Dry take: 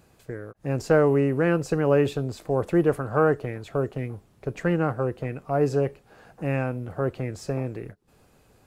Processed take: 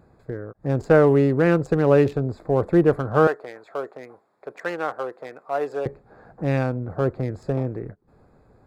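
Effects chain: Wiener smoothing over 15 samples; 3.27–5.86 HPF 640 Hz 12 dB/oct; gain +4 dB

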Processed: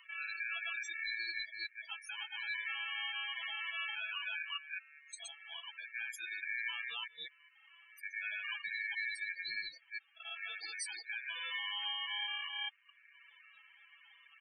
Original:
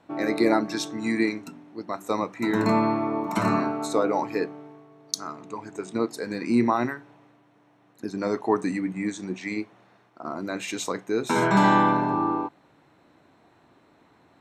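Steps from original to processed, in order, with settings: reverse delay 0.208 s, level -2 dB; bell 380 Hz -4.5 dB 1.5 oct; comb 6 ms, depth 45%; compressor 6:1, threshold -23 dBFS, peak gain reduction 10 dB; limiter -20 dBFS, peak gain reduction 11.5 dB; upward compressor, threshold -36 dBFS; loudest bins only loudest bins 8; band noise 65–490 Hz -65 dBFS; ring modulator 2000 Hz; pre-emphasis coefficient 0.97; gain +4 dB

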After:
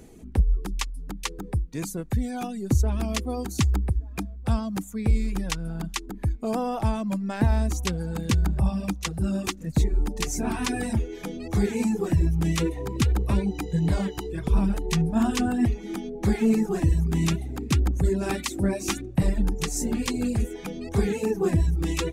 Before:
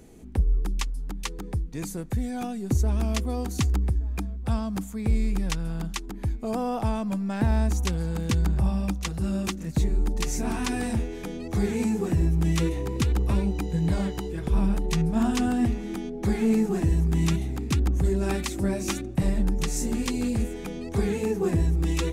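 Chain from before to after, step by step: reverb removal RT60 0.8 s; gain +2.5 dB

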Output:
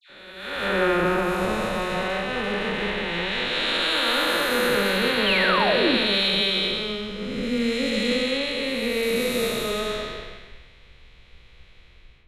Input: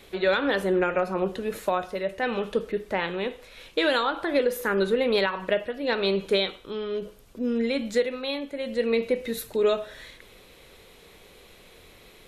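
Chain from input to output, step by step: time blur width 0.756 s; low-pass opened by the level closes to 2400 Hz, open at -27 dBFS; passive tone stack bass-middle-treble 5-5-5; in parallel at +2 dB: limiter -42 dBFS, peak gain reduction 9 dB; on the sum: AGC gain up to 11.5 dB; painted sound fall, 5.24–5.88, 210–3300 Hz -32 dBFS; dispersion lows, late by 97 ms, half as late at 1600 Hz; on a send at -4.5 dB: air absorption 460 m + reverb RT60 0.65 s, pre-delay 3 ms; on the sum: three-band expander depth 70%; gain +7 dB

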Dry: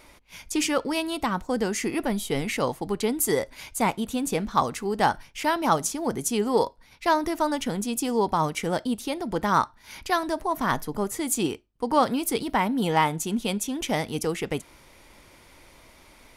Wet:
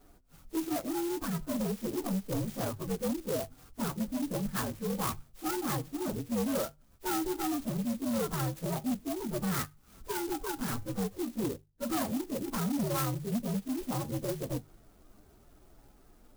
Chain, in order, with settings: inharmonic rescaling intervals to 126%; LPF 1900 Hz 6 dB/oct; low shelf 440 Hz +7.5 dB; notches 50/100/150 Hz; soft clip -22 dBFS, distortion -13 dB; clock jitter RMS 0.099 ms; gain -4.5 dB

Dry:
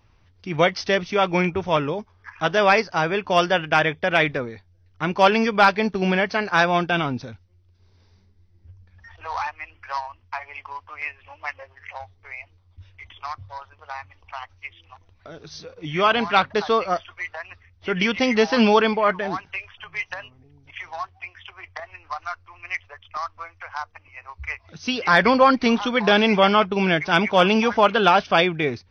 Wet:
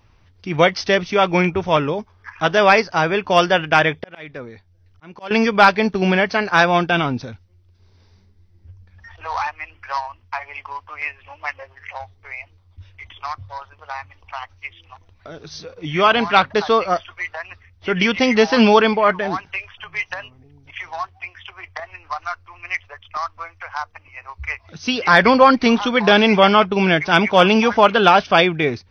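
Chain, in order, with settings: 3.78–5.31 auto swell 0.773 s; gain +4 dB

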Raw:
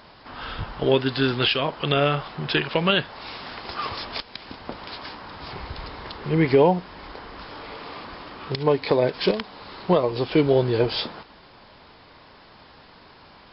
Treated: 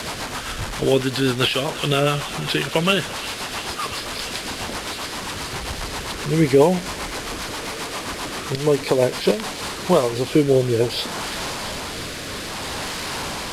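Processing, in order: delta modulation 64 kbps, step -25 dBFS; rotary speaker horn 7.5 Hz, later 0.6 Hz, at 9.2; thin delay 0.344 s, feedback 82%, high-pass 1600 Hz, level -13.5 dB; mismatched tape noise reduction encoder only; gain +4 dB

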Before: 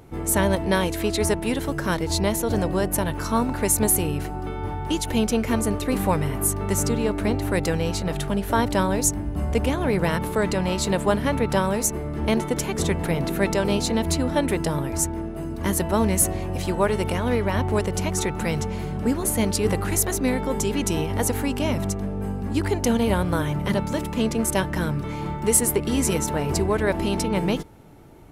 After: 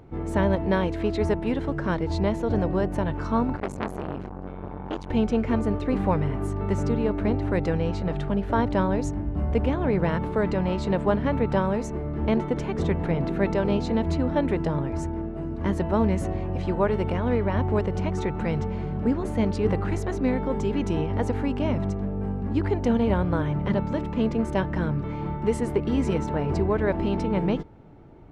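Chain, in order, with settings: tape spacing loss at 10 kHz 30 dB; 3.56–5.1 core saturation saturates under 1300 Hz

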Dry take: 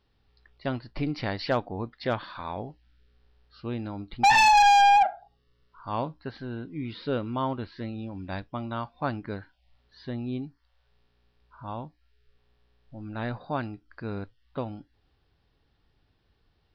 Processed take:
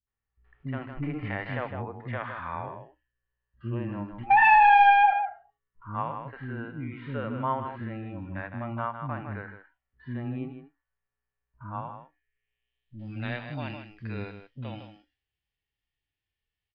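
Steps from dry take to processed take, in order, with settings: band shelf 2400 Hz +12 dB 1.1 oct; gate with hold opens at -48 dBFS; on a send: echo 0.157 s -10.5 dB; on the sum: harmonic-percussive split percussive -14 dB; bands offset in time lows, highs 70 ms, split 310 Hz; low-pass sweep 1300 Hz -> 6600 Hz, 11.97–13.31; 2.66–4.23 ripple EQ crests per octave 1.3, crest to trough 10 dB; in parallel at 0 dB: compressor, threshold -30 dBFS, peak gain reduction 18 dB; on the sum: gain -4.5 dB

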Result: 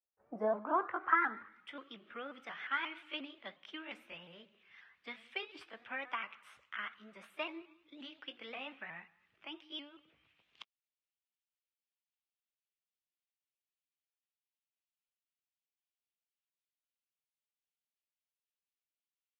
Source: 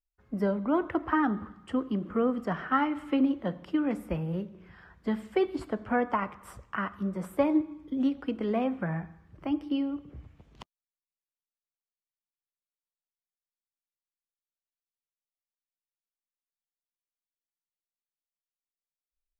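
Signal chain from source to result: repeated pitch sweeps +2.5 st, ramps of 0.178 s; band-pass sweep 540 Hz -> 2800 Hz, 0.01–1.83; gain +4 dB

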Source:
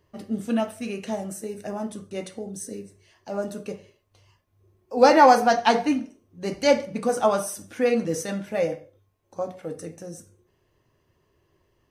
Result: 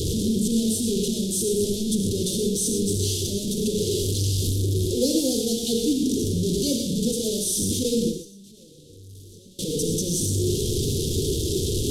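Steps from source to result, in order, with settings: delta modulation 64 kbps, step -18 dBFS; 7.83–9.59 gate with hold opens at -13 dBFS; Chebyshev band-stop 440–3400 Hz, order 4; dynamic EQ 730 Hz, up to +4 dB, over -42 dBFS, Q 1.4; non-linear reverb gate 0.14 s rising, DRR 5 dB

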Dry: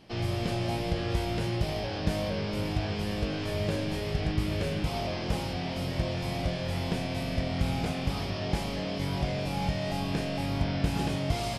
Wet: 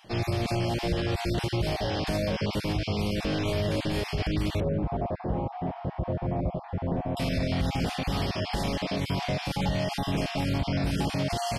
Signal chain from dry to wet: random spectral dropouts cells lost 22%; 4.6–7.17 Chebyshev low-pass 840 Hz, order 2; limiter -23.5 dBFS, peak gain reduction 9 dB; gain +5 dB

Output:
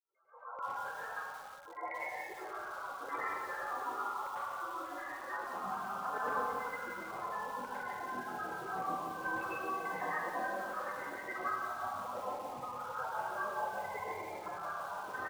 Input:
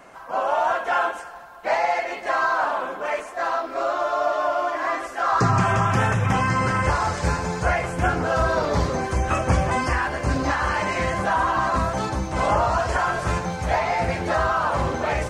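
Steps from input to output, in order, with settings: opening faded in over 1.04 s; steep low-pass 4200 Hz 48 dB/oct; limiter -17 dBFS, peak gain reduction 9 dB; loudest bins only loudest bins 8; early reflections 38 ms -8.5 dB, 59 ms -9 dB; vocal rider within 4 dB 0.5 s; spectral gate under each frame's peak -25 dB weak; LFO band-pass saw down 6.8 Hz 610–2100 Hz; 9.29–11.12 HPF 160 Hz 12 dB/oct; reverb RT60 1.1 s, pre-delay 93 ms, DRR -9.5 dB; lo-fi delay 0.175 s, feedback 55%, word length 9-bit, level -8 dB; gain +6 dB

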